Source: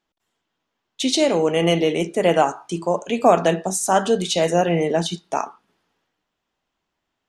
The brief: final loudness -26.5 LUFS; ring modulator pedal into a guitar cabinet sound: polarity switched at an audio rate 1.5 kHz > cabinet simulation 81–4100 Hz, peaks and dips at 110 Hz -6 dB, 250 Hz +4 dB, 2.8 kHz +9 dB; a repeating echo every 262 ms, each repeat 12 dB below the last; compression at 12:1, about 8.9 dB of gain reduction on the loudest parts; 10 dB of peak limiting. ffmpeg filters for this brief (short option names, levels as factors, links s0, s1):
-af "acompressor=threshold=0.141:ratio=12,alimiter=limit=0.15:level=0:latency=1,aecho=1:1:262|524|786:0.251|0.0628|0.0157,aeval=exprs='val(0)*sgn(sin(2*PI*1500*n/s))':c=same,highpass=81,equalizer=f=110:t=q:w=4:g=-6,equalizer=f=250:t=q:w=4:g=4,equalizer=f=2800:t=q:w=4:g=9,lowpass=f=4100:w=0.5412,lowpass=f=4100:w=1.3066,volume=0.841"